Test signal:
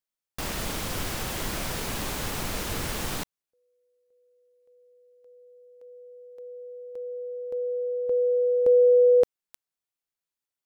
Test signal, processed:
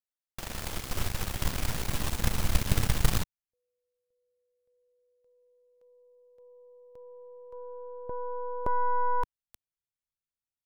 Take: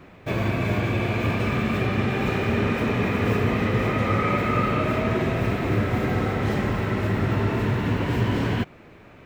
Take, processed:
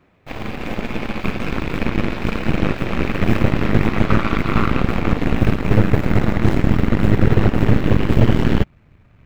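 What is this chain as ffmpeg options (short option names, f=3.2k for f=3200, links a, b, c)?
-af "asubboost=boost=6:cutoff=150,aeval=exprs='0.794*(cos(1*acos(clip(val(0)/0.794,-1,1)))-cos(1*PI/2))+0.0398*(cos(3*acos(clip(val(0)/0.794,-1,1)))-cos(3*PI/2))+0.251*(cos(6*acos(clip(val(0)/0.794,-1,1)))-cos(6*PI/2))+0.141*(cos(7*acos(clip(val(0)/0.794,-1,1)))-cos(7*PI/2))':c=same,volume=-2dB"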